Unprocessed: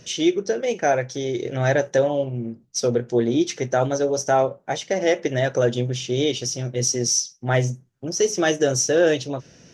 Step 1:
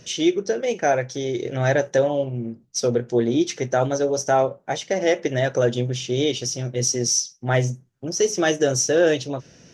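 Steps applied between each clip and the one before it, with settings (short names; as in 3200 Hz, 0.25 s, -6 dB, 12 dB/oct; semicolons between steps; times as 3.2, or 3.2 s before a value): nothing audible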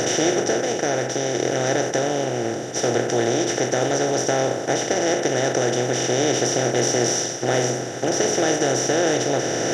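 per-bin compression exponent 0.2; AGC; warbling echo 0.322 s, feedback 66%, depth 67 cents, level -23.5 dB; gain -6.5 dB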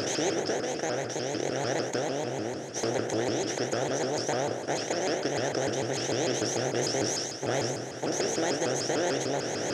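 shaped vibrato saw up 6.7 Hz, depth 250 cents; gain -8.5 dB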